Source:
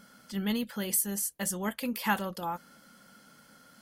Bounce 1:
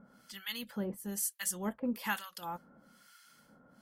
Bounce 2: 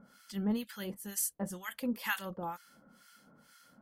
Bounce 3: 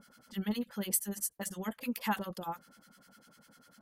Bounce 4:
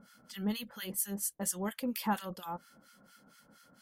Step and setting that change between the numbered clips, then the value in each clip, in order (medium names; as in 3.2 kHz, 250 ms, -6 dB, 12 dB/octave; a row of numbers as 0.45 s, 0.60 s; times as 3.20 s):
harmonic tremolo, rate: 1.1 Hz, 2.1 Hz, 10 Hz, 4.3 Hz